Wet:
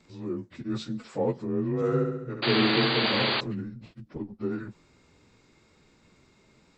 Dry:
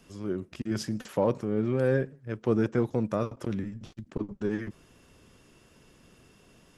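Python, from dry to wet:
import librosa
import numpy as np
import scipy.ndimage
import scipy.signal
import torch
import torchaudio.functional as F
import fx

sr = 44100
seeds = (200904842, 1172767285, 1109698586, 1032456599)

y = fx.partial_stretch(x, sr, pct=90)
y = fx.room_flutter(y, sr, wall_m=11.7, rt60_s=0.88, at=(1.75, 3.45))
y = fx.spec_paint(y, sr, seeds[0], shape='noise', start_s=2.42, length_s=0.99, low_hz=270.0, high_hz=4800.0, level_db=-27.0)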